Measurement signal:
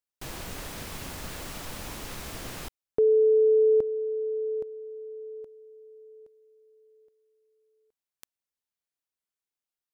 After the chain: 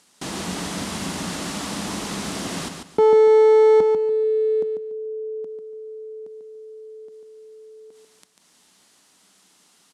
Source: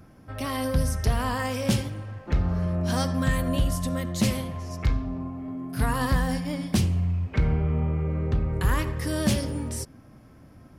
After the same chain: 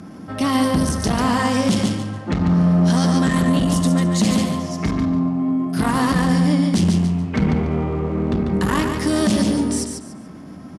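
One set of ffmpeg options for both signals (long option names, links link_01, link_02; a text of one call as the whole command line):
ffmpeg -i in.wav -af "acompressor=mode=upward:threshold=-40dB:ratio=2.5:attack=0.24:release=109:knee=2.83:detection=peak,aeval=exprs='clip(val(0),-1,0.0447)':channel_layout=same,highpass=120,equalizer=frequency=120:width_type=q:width=4:gain=-9,equalizer=frequency=190:width_type=q:width=4:gain=9,equalizer=frequency=280:width_type=q:width=4:gain=4,equalizer=frequency=530:width_type=q:width=4:gain=-4,equalizer=frequency=1600:width_type=q:width=4:gain=-3,equalizer=frequency=2400:width_type=q:width=4:gain=-4,lowpass=frequency=10000:width=0.5412,lowpass=frequency=10000:width=1.3066,aecho=1:1:144|288|432:0.501|0.13|0.0339,alimiter=level_in=17.5dB:limit=-1dB:release=50:level=0:latency=1,volume=-7.5dB" out.wav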